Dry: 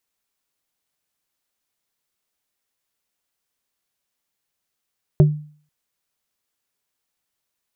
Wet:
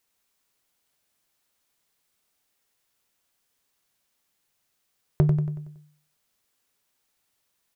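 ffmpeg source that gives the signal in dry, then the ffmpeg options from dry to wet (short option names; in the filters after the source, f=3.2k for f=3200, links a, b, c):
-f lavfi -i "aevalsrc='0.501*pow(10,-3*t/0.46)*sin(2*PI*150*t)+0.224*pow(10,-3*t/0.153)*sin(2*PI*375*t)+0.1*pow(10,-3*t/0.087)*sin(2*PI*600*t)':d=0.49:s=44100"
-filter_complex "[0:a]acompressor=threshold=-26dB:ratio=2,asplit=2[a][b];[b]volume=23.5dB,asoftclip=hard,volume=-23.5dB,volume=-4.5dB[c];[a][c]amix=inputs=2:normalize=0,aecho=1:1:93|186|279|372|465|558:0.447|0.21|0.0987|0.0464|0.0218|0.0102"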